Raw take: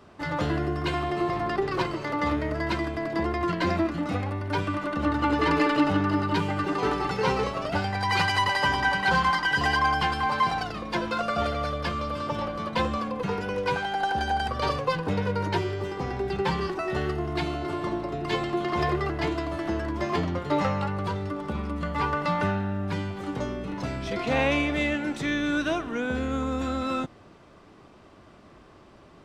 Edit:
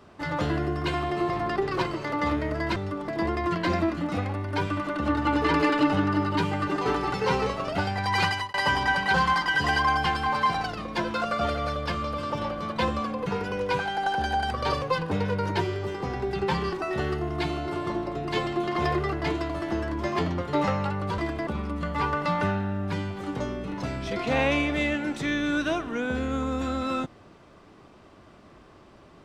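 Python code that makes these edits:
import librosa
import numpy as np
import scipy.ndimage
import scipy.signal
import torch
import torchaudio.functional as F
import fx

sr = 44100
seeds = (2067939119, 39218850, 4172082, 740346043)

y = fx.edit(x, sr, fx.swap(start_s=2.76, length_s=0.29, other_s=21.15, other_length_s=0.32),
    fx.fade_out_span(start_s=8.23, length_s=0.28), tone=tone)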